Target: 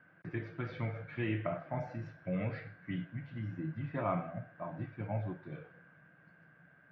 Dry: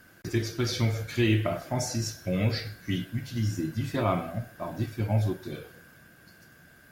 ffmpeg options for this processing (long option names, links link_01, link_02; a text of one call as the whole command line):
ffmpeg -i in.wav -af "highpass=150,equalizer=frequency=160:width_type=q:width=4:gain=8,equalizer=frequency=230:width_type=q:width=4:gain=-7,equalizer=frequency=380:width_type=q:width=4:gain=-8,lowpass=frequency=2200:width=0.5412,lowpass=frequency=2200:width=1.3066,volume=-6dB" out.wav